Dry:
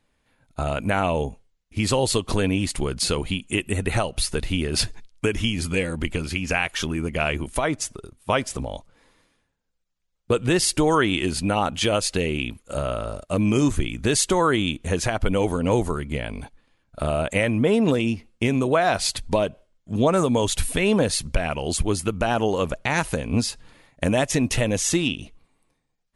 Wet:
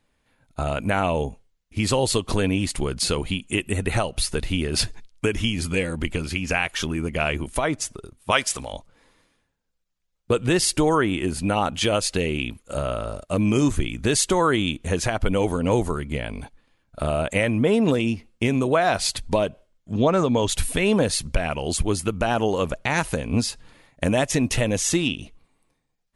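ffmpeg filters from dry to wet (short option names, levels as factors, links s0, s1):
-filter_complex "[0:a]asettb=1/sr,asplit=3[s0][s1][s2];[s0]atrim=end=8.314[s3];[s1]atrim=start=8.31:end=8.73,asetpts=PTS-STARTPTS,afade=t=in:d=0.004:c=qsin,afade=t=out:st=0.416:d=0.004:c=qsin,tiltshelf=f=780:g=-8[s4];[s2]atrim=start=8.726[s5];[s3][s4]acrossfade=d=0.004:c1=hsin:c2=qsin[s6];[s6][s5]acrossfade=d=0.004:c1=qsin:c2=hsin,asettb=1/sr,asplit=3[s7][s8][s9];[s7]atrim=end=10.894[s10];[s8]atrim=start=10.89:end=11.4,asetpts=PTS-STARTPTS,afade=t=in:d=0.004:c=qsin,afade=t=out:st=0.506:d=0.004:c=qsin,equalizer=f=4000:t=o:w=1.6:g=-8.5[s11];[s9]atrim=start=11.396[s12];[s10][s11]acrossfade=d=0.004:c1=hsin:c2=qsin[s13];[s13][s12]acrossfade=d=0.004:c1=qsin:c2=hsin,asettb=1/sr,asplit=3[s14][s15][s16];[s14]atrim=end=19.944[s17];[s15]atrim=start=19.94:end=20.49,asetpts=PTS-STARTPTS,afade=t=in:d=0.004:c=qsin,afade=t=out:st=0.546:d=0.004:c=qsin,lowpass=f=6200:w=0.5412,lowpass=f=6200:w=1.3066[s18];[s16]atrim=start=20.486[s19];[s17][s18]acrossfade=d=0.004:c1=hsin:c2=qsin[s20];[s20][s19]acrossfade=d=0.004:c1=qsin:c2=hsin"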